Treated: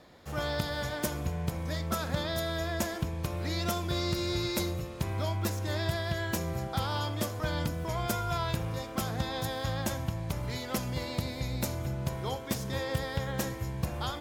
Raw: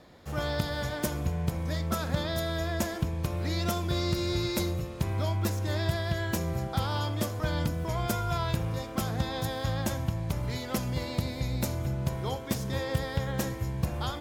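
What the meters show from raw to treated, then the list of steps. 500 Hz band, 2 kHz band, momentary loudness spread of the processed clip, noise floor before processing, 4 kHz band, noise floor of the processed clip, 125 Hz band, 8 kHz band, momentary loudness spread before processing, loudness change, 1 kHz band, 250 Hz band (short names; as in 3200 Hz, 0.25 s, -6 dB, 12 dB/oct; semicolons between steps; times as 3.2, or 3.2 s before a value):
-1.0 dB, 0.0 dB, 4 LU, -38 dBFS, 0.0 dB, -40 dBFS, -3.0 dB, 0.0 dB, 3 LU, -2.0 dB, -0.5 dB, -2.5 dB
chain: low shelf 380 Hz -3.5 dB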